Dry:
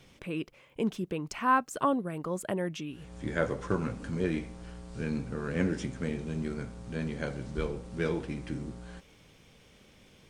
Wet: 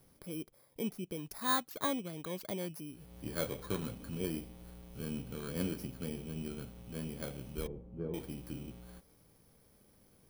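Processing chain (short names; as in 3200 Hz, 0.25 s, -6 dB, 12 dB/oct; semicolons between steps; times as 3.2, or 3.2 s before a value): FFT order left unsorted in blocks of 16 samples; 7.67–8.14 Bessel low-pass 560 Hz, order 2; gain -7 dB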